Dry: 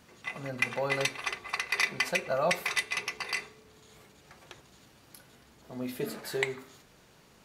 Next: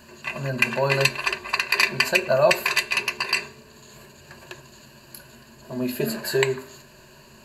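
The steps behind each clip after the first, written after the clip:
EQ curve with evenly spaced ripples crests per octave 1.4, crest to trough 13 dB
level +7.5 dB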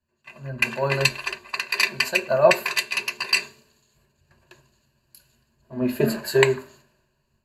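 automatic gain control gain up to 5.5 dB
multiband upward and downward expander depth 100%
level −4 dB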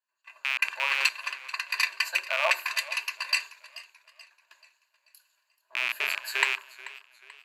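loose part that buzzes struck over −33 dBFS, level −9 dBFS
four-pole ladder high-pass 800 Hz, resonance 25%
feedback echo with a swinging delay time 434 ms, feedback 43%, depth 69 cents, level −18 dB

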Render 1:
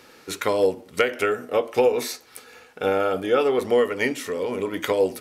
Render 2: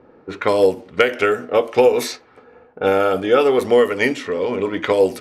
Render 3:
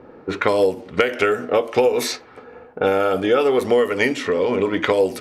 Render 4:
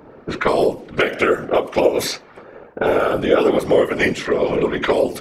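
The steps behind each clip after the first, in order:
low-pass that shuts in the quiet parts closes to 680 Hz, open at −18.5 dBFS; level +5.5 dB
downward compressor 2.5 to 1, threshold −23 dBFS, peak gain reduction 9.5 dB; level +5.5 dB
random phases in short frames; level +1 dB

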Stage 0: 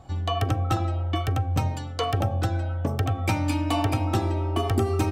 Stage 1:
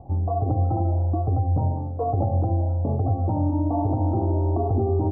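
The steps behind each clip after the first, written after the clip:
brickwall limiter −19 dBFS, peak gain reduction 7 dB
Butterworth low-pass 890 Hz 48 dB per octave
level +5 dB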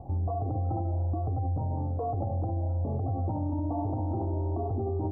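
brickwall limiter −24 dBFS, peak gain reduction 10.5 dB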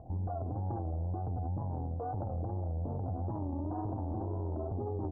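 harmonic generator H 2 −12 dB, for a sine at −23.5 dBFS
tape wow and flutter 110 cents
low-pass filter 1,100 Hz 24 dB per octave
level −6 dB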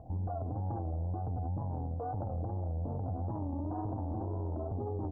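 notch filter 370 Hz, Q 12

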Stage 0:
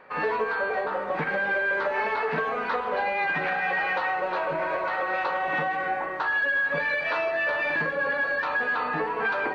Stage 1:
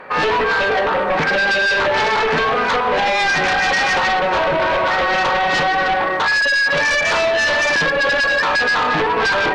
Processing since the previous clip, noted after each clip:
sine wavefolder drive 9 dB, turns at −15 dBFS
level +1.5 dB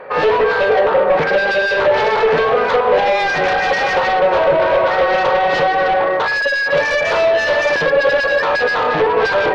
graphic EQ with 10 bands 125 Hz +3 dB, 250 Hz −4 dB, 500 Hz +11 dB, 8,000 Hz −9 dB
level −2 dB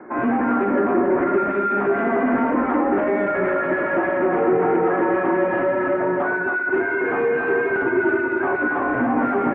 multi-tap delay 84/276 ms −10.5/−5 dB
single-sideband voice off tune −190 Hz 310–2,200 Hz
level −6.5 dB

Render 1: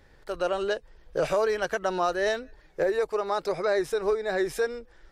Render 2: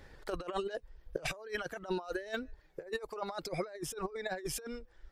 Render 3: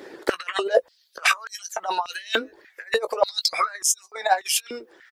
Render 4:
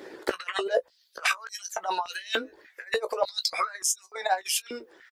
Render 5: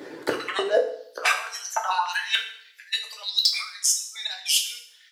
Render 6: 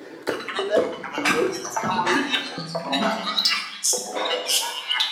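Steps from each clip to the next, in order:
reverb reduction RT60 1.8 s; compressor whose output falls as the input rises −33 dBFS, ratio −0.5; level −4 dB
double-tracking delay 18 ms −9.5 dB; harmonic and percussive parts rebalanced percussive +8 dB; high-pass on a step sequencer 3.4 Hz 350–6,500 Hz; level +7.5 dB
downward compressor 1.5 to 1, threshold −25 dBFS, peak gain reduction 5.5 dB; double-tracking delay 16 ms −11 dB; level −2.5 dB
high-pass filter sweep 130 Hz → 3,300 Hz, 0:00.37–0:02.64; in parallel at −6 dB: wave folding −14 dBFS; on the sum: feedback delay network reverb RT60 0.65 s, low-frequency decay 1×, high-frequency decay 0.95×, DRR 2.5 dB; level −1.5 dB
delay with pitch and tempo change per echo 393 ms, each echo −5 semitones, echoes 3

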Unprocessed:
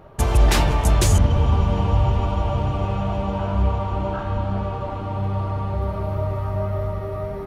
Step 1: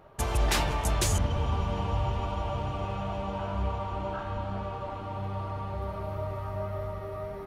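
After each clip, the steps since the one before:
low-shelf EQ 470 Hz −6.5 dB
level −5 dB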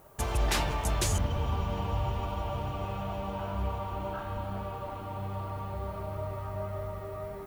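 background noise violet −61 dBFS
level −2 dB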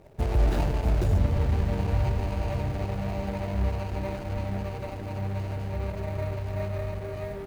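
running median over 41 samples
level +6.5 dB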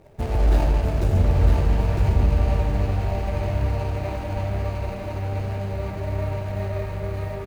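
single-tap delay 956 ms −4.5 dB
convolution reverb RT60 1.6 s, pre-delay 8 ms, DRR 3 dB
level +1 dB

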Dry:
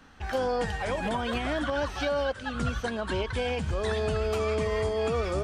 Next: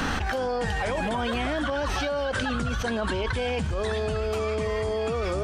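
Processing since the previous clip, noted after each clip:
envelope flattener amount 100%
level −1.5 dB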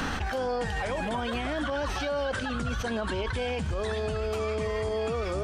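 brickwall limiter −20.5 dBFS, peak gain reduction 6.5 dB
level −1.5 dB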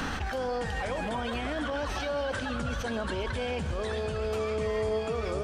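echo machine with several playback heads 134 ms, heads first and third, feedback 75%, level −17 dB
level −2 dB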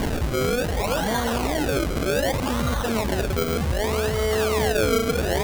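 sample-and-hold swept by an LFO 33×, swing 100% 0.65 Hz
level +8.5 dB

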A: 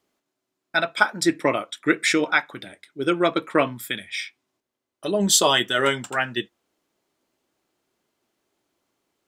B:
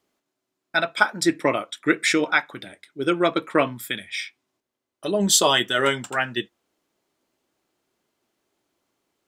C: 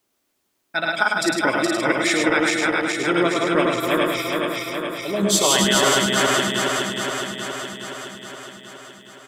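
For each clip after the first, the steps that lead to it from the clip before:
no processing that can be heard
feedback delay that plays each chunk backwards 209 ms, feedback 81%, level −1.5 dB; bit-depth reduction 12 bits, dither triangular; single-tap delay 104 ms −4 dB; level −2.5 dB

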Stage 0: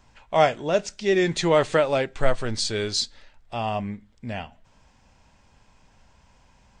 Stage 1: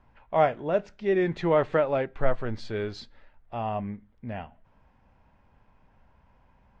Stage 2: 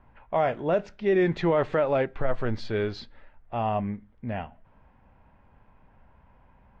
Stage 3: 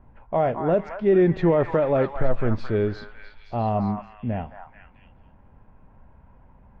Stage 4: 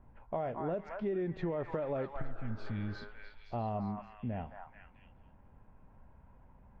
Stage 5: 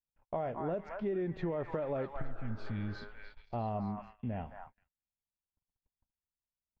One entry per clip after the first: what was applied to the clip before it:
low-pass filter 1,800 Hz 12 dB per octave; level −3 dB
low-pass that shuts in the quiet parts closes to 2,700 Hz, open at −20 dBFS; brickwall limiter −18.5 dBFS, peak gain reduction 8.5 dB; level +3.5 dB
tilt shelving filter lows +6.5 dB; echo through a band-pass that steps 218 ms, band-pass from 1,200 Hz, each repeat 0.7 octaves, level −2 dB
healed spectral selection 0:02.24–0:02.98, 320–1,700 Hz both; downward compressor 5 to 1, threshold −26 dBFS, peak gain reduction 11 dB; level −7 dB
noise gate −50 dBFS, range −46 dB

